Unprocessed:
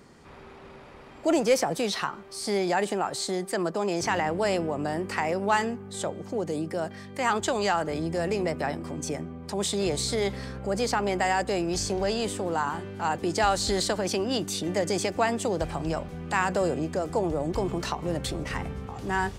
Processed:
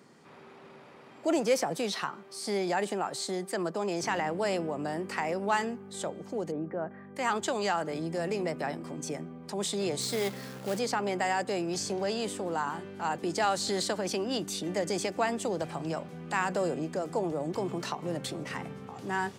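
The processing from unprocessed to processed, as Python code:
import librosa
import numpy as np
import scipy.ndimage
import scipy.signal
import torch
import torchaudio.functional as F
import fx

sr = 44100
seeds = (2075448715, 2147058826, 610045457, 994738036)

y = fx.lowpass(x, sr, hz=1800.0, slope=24, at=(6.5, 7.15), fade=0.02)
y = fx.quant_companded(y, sr, bits=4, at=(10.01, 10.79))
y = scipy.signal.sosfilt(scipy.signal.butter(4, 130.0, 'highpass', fs=sr, output='sos'), y)
y = y * librosa.db_to_amplitude(-4.0)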